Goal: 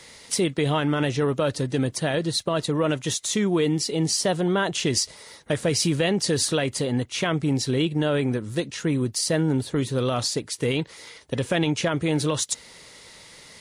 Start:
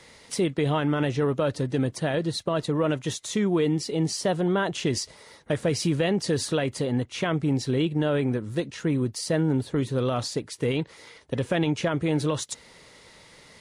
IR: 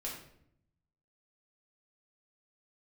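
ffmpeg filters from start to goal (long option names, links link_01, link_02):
-af "highshelf=frequency=3000:gain=8,volume=1dB"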